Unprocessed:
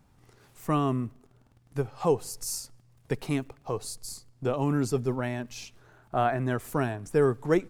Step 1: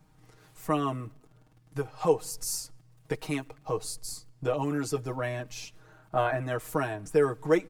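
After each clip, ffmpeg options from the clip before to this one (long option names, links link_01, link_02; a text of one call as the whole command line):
ffmpeg -i in.wav -filter_complex "[0:a]aecho=1:1:6.4:0.85,acrossover=split=330[link_01][link_02];[link_01]acompressor=threshold=-33dB:ratio=6[link_03];[link_03][link_02]amix=inputs=2:normalize=0,volume=-1.5dB" out.wav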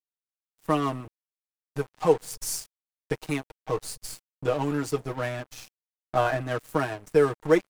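ffmpeg -i in.wav -af "aeval=exprs='sgn(val(0))*max(abs(val(0))-0.00891,0)':channel_layout=same,volume=4dB" out.wav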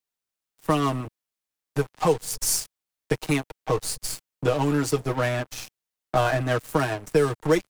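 ffmpeg -i in.wav -filter_complex "[0:a]acrossover=split=140|3000[link_01][link_02][link_03];[link_02]acompressor=threshold=-29dB:ratio=2.5[link_04];[link_01][link_04][link_03]amix=inputs=3:normalize=0,volume=7.5dB" out.wav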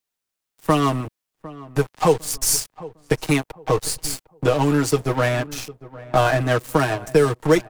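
ffmpeg -i in.wav -filter_complex "[0:a]asplit=2[link_01][link_02];[link_02]adelay=754,lowpass=frequency=1400:poles=1,volume=-18dB,asplit=2[link_03][link_04];[link_04]adelay=754,lowpass=frequency=1400:poles=1,volume=0.34,asplit=2[link_05][link_06];[link_06]adelay=754,lowpass=frequency=1400:poles=1,volume=0.34[link_07];[link_01][link_03][link_05][link_07]amix=inputs=4:normalize=0,volume=4.5dB" out.wav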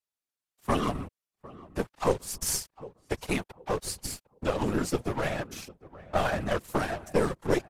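ffmpeg -i in.wav -af "afftfilt=real='hypot(re,im)*cos(2*PI*random(0))':imag='hypot(re,im)*sin(2*PI*random(1))':win_size=512:overlap=0.75,aeval=exprs='(tanh(5.01*val(0)+0.7)-tanh(0.7))/5.01':channel_layout=same,aresample=32000,aresample=44100" out.wav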